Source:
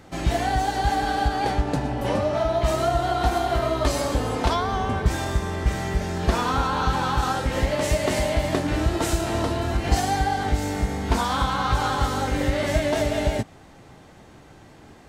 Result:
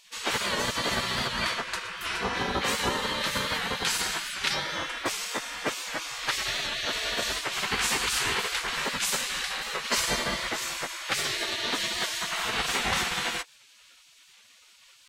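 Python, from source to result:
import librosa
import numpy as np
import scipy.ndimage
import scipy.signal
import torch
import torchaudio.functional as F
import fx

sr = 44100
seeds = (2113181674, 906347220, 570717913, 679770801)

y = fx.bass_treble(x, sr, bass_db=-5, treble_db=-4)
y = fx.spec_gate(y, sr, threshold_db=-20, keep='weak')
y = fx.record_warp(y, sr, rpm=78.0, depth_cents=100.0)
y = y * 10.0 ** (8.0 / 20.0)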